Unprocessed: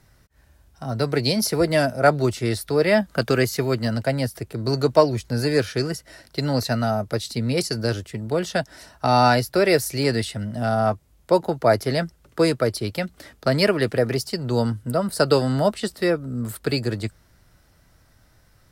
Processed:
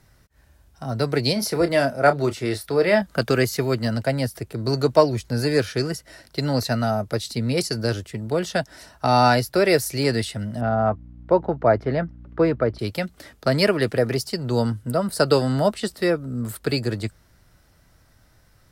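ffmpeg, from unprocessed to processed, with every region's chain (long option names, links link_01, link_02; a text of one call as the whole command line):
ffmpeg -i in.wav -filter_complex "[0:a]asettb=1/sr,asplit=3[link_01][link_02][link_03];[link_01]atrim=end=1.334[link_04];[link_02]atrim=start=1.33:end=3.02,asetpts=PTS-STARTPTS,afade=type=in:duration=0.004:curve=qsin,afade=type=out:start_time=1.686:duration=0.004:curve=qsin,bass=frequency=250:gain=-4,treble=frequency=4000:gain=-4,asplit=2[link_05][link_06];[link_06]adelay=29,volume=-10.5dB[link_07];[link_05][link_07]amix=inputs=2:normalize=0,atrim=end_sample=74529[link_08];[link_03]atrim=start=3.016[link_09];[link_04][link_08]acrossfade=duration=0.004:curve1=hsin:curve2=qsin[link_10];[link_10][link_09]acrossfade=duration=0.004:curve1=qsin:curve2=hsin,asettb=1/sr,asplit=3[link_11][link_12][link_13];[link_11]atrim=end=10.614[link_14];[link_12]atrim=start=10.61:end=12.79,asetpts=PTS-STARTPTS,afade=type=in:duration=0.004:curve=qsin,afade=type=out:start_time=2.176:duration=0.004:curve=qsin,lowpass=1800,aeval=exprs='val(0)+0.00891*(sin(2*PI*60*n/s)+sin(2*PI*2*60*n/s)/2+sin(2*PI*3*60*n/s)/3+sin(2*PI*4*60*n/s)/4+sin(2*PI*5*60*n/s)/5)':channel_layout=same[link_15];[link_13]atrim=start=12.786[link_16];[link_14][link_15]acrossfade=duration=0.004:curve1=hsin:curve2=qsin[link_17];[link_17][link_16]acrossfade=duration=0.004:curve1=qsin:curve2=hsin" out.wav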